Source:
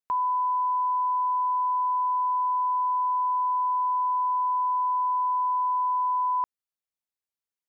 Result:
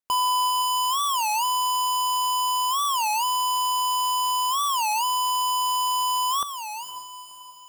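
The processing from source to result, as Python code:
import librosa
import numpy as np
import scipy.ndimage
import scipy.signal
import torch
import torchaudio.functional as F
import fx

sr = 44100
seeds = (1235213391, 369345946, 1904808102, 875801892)

y = fx.halfwave_hold(x, sr)
y = fx.echo_diffused(y, sr, ms=502, feedback_pct=45, wet_db=-9)
y = fx.record_warp(y, sr, rpm=33.33, depth_cents=250.0)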